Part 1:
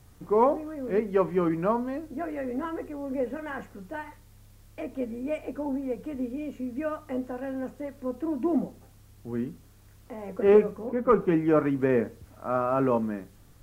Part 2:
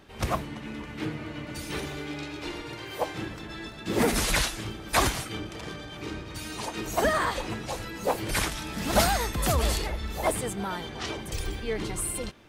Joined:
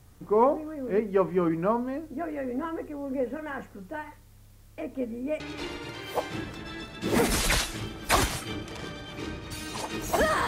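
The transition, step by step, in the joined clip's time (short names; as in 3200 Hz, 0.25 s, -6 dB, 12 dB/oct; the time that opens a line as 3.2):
part 1
5.4 switch to part 2 from 2.24 s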